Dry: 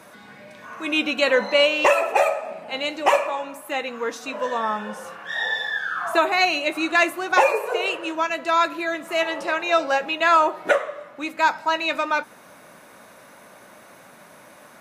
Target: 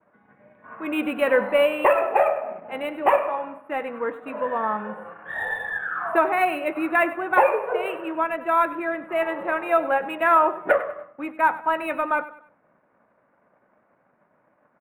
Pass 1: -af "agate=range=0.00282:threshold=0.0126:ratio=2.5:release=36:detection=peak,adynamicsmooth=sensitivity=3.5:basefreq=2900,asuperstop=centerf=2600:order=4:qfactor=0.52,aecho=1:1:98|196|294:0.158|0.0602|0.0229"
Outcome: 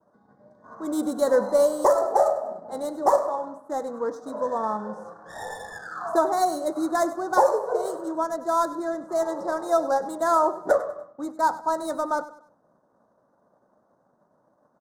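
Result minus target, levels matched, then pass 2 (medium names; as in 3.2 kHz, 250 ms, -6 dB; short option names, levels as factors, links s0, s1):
2 kHz band -10.5 dB
-af "agate=range=0.00282:threshold=0.0126:ratio=2.5:release=36:detection=peak,adynamicsmooth=sensitivity=3.5:basefreq=2900,asuperstop=centerf=5300:order=4:qfactor=0.52,aecho=1:1:98|196|294:0.158|0.0602|0.0229"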